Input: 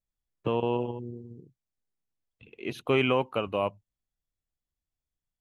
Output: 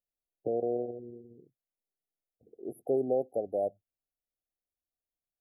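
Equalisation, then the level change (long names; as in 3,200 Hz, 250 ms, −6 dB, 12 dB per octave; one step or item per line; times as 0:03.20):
linear-phase brick-wall band-stop 790–9,600 Hz
bass and treble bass −15 dB, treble −2 dB
0.0 dB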